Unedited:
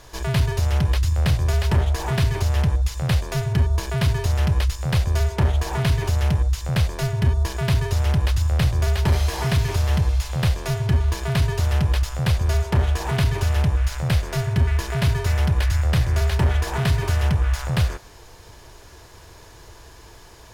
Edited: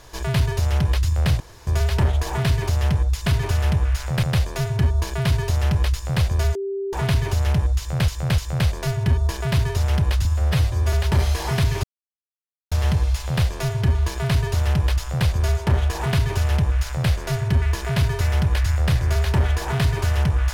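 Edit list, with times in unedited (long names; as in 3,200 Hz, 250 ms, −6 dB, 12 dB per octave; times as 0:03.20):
0:01.40: splice in room tone 0.27 s
0:05.31–0:05.69: beep over 393 Hz −23.5 dBFS
0:06.54–0:06.84: repeat, 3 plays
0:08.41–0:08.86: time-stretch 1.5×
0:09.77: splice in silence 0.88 s
0:13.18–0:14.15: duplicate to 0:02.99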